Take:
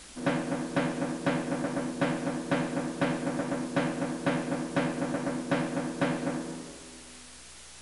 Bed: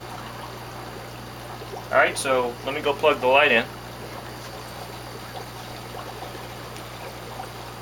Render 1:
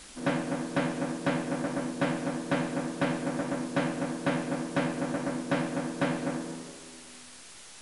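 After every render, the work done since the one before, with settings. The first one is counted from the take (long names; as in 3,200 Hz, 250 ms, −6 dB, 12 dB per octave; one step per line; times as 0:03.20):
hum removal 60 Hz, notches 12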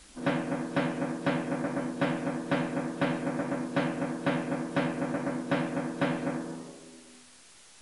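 noise reduction from a noise print 6 dB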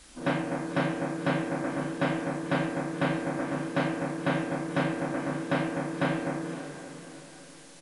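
double-tracking delay 34 ms −5 dB
on a send: feedback delay with all-pass diffusion 529 ms, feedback 44%, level −11.5 dB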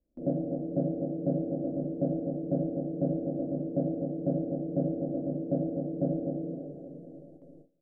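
elliptic low-pass filter 630 Hz, stop band 40 dB
noise gate with hold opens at −42 dBFS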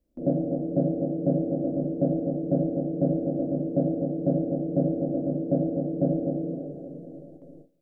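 level +5 dB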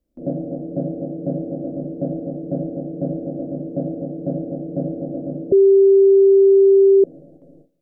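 0:05.52–0:07.04: beep over 391 Hz −8 dBFS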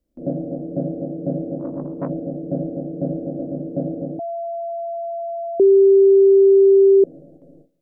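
0:01.59–0:02.10: saturating transformer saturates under 460 Hz
0:04.19–0:05.60: beep over 678 Hz −24 dBFS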